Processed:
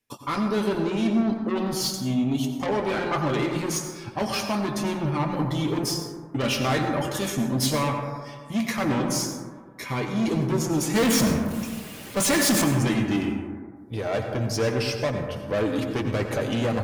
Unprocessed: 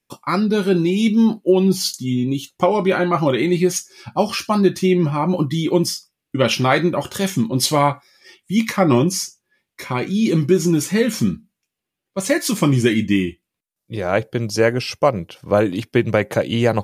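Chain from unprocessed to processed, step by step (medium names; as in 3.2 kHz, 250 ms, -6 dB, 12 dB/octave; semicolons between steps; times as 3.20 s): 0.73–1.54 s: peaking EQ 13 kHz -13.5 dB 0.58 oct; saturation -18.5 dBFS, distortion -8 dB; comb of notches 180 Hz; 10.94–12.64 s: power-law waveshaper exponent 0.35; plate-style reverb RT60 1.7 s, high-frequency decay 0.25×, pre-delay 75 ms, DRR 4.5 dB; trim -1.5 dB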